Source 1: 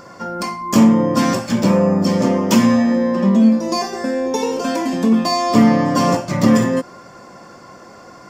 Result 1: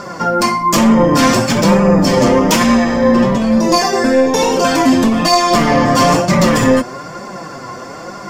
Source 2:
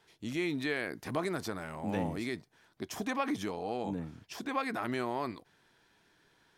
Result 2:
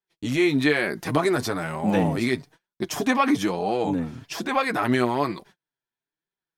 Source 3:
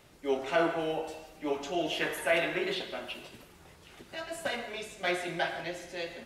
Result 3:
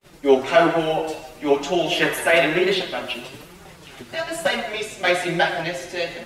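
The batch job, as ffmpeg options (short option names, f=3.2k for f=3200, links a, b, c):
-af "apsyclip=18.5dB,agate=range=-38dB:threshold=-40dB:ratio=16:detection=peak,flanger=delay=4.8:depth=3.7:regen=20:speed=1.1:shape=triangular,volume=-3.5dB"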